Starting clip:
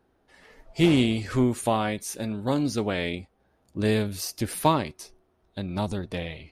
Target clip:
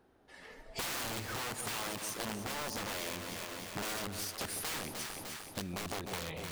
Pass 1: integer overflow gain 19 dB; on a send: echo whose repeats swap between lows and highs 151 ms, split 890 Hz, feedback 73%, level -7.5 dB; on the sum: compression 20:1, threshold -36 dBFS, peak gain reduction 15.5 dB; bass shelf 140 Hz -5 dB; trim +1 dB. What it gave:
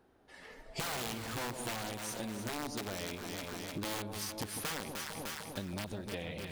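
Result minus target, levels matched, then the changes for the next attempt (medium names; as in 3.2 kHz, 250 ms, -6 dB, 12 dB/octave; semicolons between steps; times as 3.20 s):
integer overflow: distortion -9 dB
change: integer overflow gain 25 dB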